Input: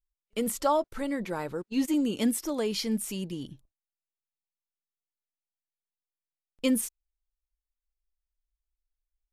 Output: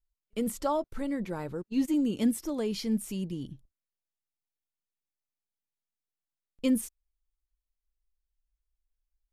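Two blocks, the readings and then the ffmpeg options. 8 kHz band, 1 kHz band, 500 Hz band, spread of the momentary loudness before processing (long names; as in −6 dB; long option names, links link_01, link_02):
−6.0 dB, −5.0 dB, −3.0 dB, 11 LU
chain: -af "lowshelf=frequency=320:gain=10,volume=-6dB"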